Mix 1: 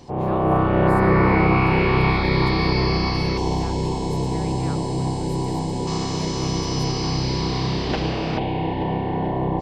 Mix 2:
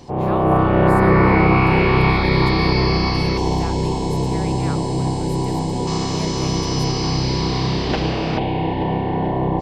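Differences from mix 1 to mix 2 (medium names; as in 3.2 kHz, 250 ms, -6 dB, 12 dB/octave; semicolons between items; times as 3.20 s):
speech +6.0 dB; background +3.0 dB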